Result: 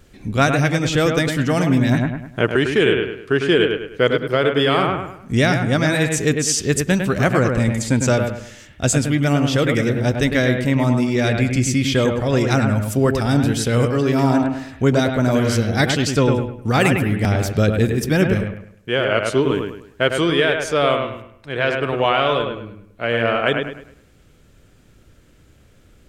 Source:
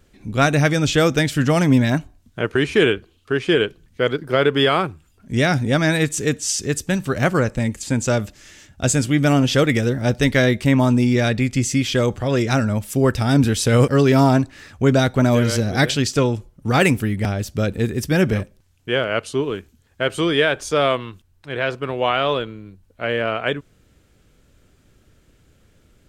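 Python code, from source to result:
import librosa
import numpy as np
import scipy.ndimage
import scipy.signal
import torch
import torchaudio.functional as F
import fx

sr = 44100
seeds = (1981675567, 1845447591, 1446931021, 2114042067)

y = fx.echo_bbd(x, sr, ms=103, stages=2048, feedback_pct=35, wet_db=-5.0)
y = fx.rider(y, sr, range_db=10, speed_s=0.5)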